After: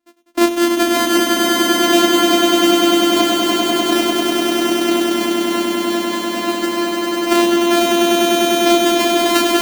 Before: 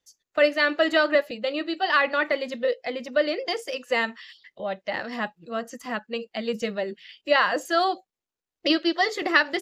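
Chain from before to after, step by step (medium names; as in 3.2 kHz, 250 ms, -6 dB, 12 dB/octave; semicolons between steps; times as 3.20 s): sorted samples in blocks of 128 samples; resonant low shelf 180 Hz -11.5 dB, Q 3; echo with a slow build-up 99 ms, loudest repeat 8, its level -3 dB; trim +2.5 dB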